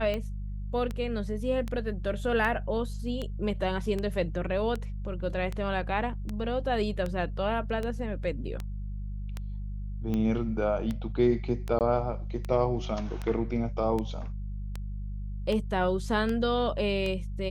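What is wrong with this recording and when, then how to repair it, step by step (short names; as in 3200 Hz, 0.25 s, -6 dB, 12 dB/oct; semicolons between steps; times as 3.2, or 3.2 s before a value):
hum 50 Hz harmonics 4 -35 dBFS
tick 78 rpm -20 dBFS
11.79–11.81 gap 18 ms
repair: de-click; de-hum 50 Hz, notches 4; interpolate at 11.79, 18 ms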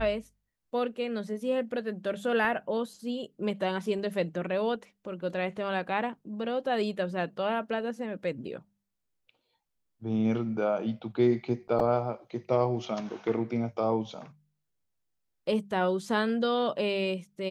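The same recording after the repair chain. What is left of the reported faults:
none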